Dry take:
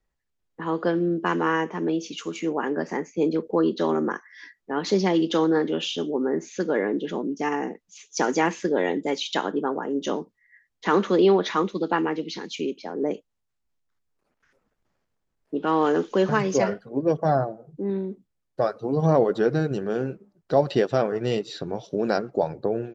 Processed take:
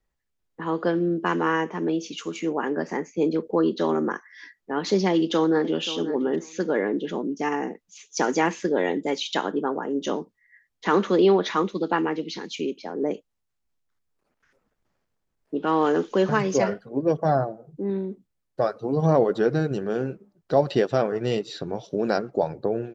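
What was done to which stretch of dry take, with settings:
5.11–5.82 echo throw 0.53 s, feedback 15%, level -13.5 dB

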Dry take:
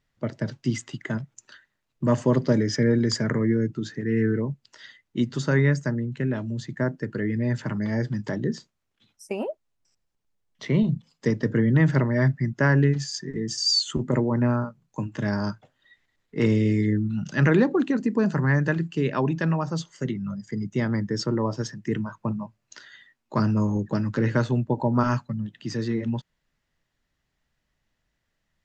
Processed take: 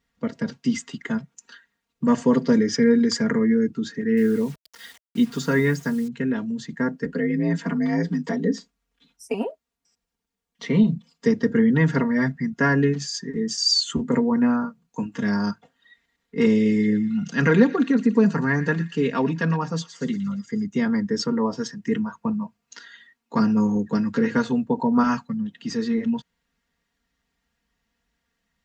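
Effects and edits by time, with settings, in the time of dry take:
4.17–6.08 requantised 8-bit, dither none
7.05–9.34 frequency shift +45 Hz
16.57–20.66 thin delay 0.116 s, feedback 50%, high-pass 2300 Hz, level -10 dB
whole clip: HPF 46 Hz; notch 630 Hz, Q 12; comb 4.3 ms, depth 92%

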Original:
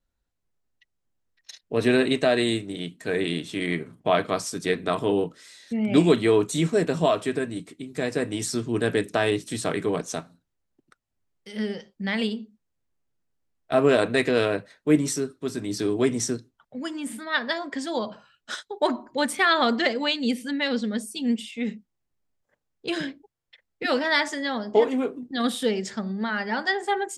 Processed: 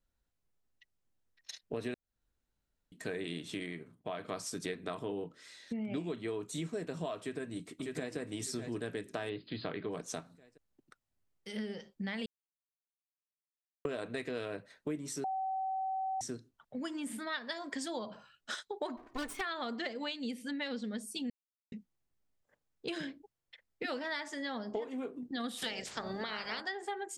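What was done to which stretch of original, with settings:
1.94–2.92 room tone
3.53–4.4 dip -10 dB, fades 0.20 s
5.03–6.28 high shelf 6400 Hz -9.5 dB
7.19–8.17 echo throw 0.6 s, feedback 40%, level -9 dB
9.29–9.91 brick-wall FIR low-pass 5000 Hz
12.26–13.85 mute
15.24–16.21 bleep 764 Hz -16 dBFS
17.27–17.88 high shelf 5100 Hz +10 dB
18.97–19.41 minimum comb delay 2.8 ms
21.3–21.72 mute
25.57–26.6 spectral limiter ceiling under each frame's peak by 24 dB
whole clip: compressor 6:1, threshold -33 dBFS; gain -3 dB

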